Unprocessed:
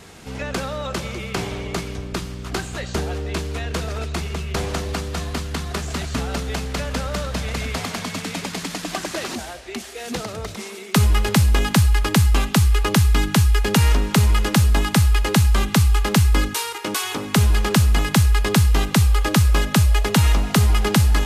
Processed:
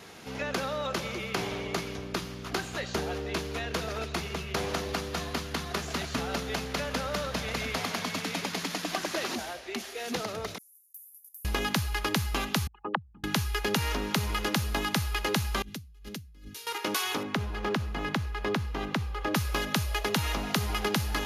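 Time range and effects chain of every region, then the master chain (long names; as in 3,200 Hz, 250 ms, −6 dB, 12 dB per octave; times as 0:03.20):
0:10.58–0:11.45: inverse Chebyshev high-pass filter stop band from 2,400 Hz, stop band 80 dB + downward compressor 2.5 to 1, threshold −43 dBFS
0:12.67–0:13.24: spectral envelope exaggerated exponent 3 + loudspeaker in its box 270–3,000 Hz, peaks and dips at 280 Hz −9 dB, 420 Hz −8 dB, 820 Hz +9 dB, 2,300 Hz −7 dB
0:15.62–0:16.67: guitar amp tone stack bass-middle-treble 10-0-1 + compressor whose output falls as the input rises −33 dBFS
0:17.23–0:19.35: low-pass filter 1,600 Hz 6 dB per octave + downward compressor, threshold −17 dBFS
whole clip: high-pass filter 220 Hz 6 dB per octave; parametric band 8,100 Hz −13.5 dB 0.22 octaves; downward compressor 4 to 1, threshold −22 dBFS; level −3 dB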